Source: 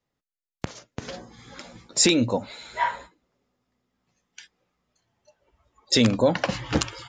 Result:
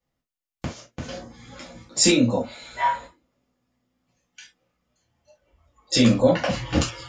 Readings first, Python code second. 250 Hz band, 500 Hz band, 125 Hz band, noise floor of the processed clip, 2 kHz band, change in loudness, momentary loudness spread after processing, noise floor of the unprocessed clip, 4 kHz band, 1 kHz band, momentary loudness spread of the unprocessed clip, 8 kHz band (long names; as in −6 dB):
+3.0 dB, +2.0 dB, +3.0 dB, below −85 dBFS, +0.5 dB, +1.5 dB, 19 LU, below −85 dBFS, 0.0 dB, +2.5 dB, 20 LU, +1.0 dB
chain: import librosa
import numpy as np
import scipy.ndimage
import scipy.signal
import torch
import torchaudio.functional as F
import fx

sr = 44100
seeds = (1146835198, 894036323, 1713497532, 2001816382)

y = fx.low_shelf(x, sr, hz=99.0, db=6.5)
y = fx.rev_gated(y, sr, seeds[0], gate_ms=90, shape='falling', drr_db=-5.0)
y = F.gain(torch.from_numpy(y), -5.5).numpy()